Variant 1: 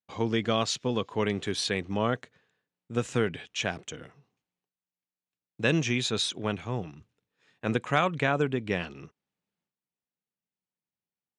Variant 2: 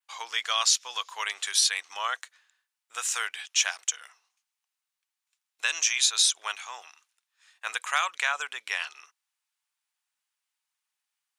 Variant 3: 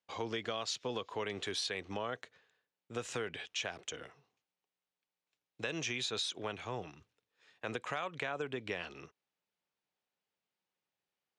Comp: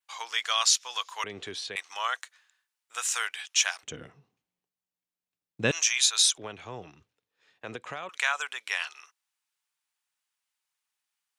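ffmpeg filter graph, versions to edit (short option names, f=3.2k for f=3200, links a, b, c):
-filter_complex "[2:a]asplit=2[a][b];[1:a]asplit=4[c][d][e][f];[c]atrim=end=1.242[g];[a]atrim=start=1.238:end=1.762[h];[d]atrim=start=1.758:end=3.832[i];[0:a]atrim=start=3.828:end=5.712[j];[e]atrim=start=5.708:end=6.382[k];[b]atrim=start=6.378:end=8.092[l];[f]atrim=start=8.088[m];[g][h]acrossfade=d=0.004:c1=hsin:c2=hsin[n];[n][i]acrossfade=d=0.004:c1=hsin:c2=hsin[o];[o][j]acrossfade=d=0.004:c1=hsin:c2=hsin[p];[p][k]acrossfade=d=0.004:c1=hsin:c2=hsin[q];[q][l]acrossfade=d=0.004:c1=hsin:c2=hsin[r];[r][m]acrossfade=d=0.004:c1=hsin:c2=hsin"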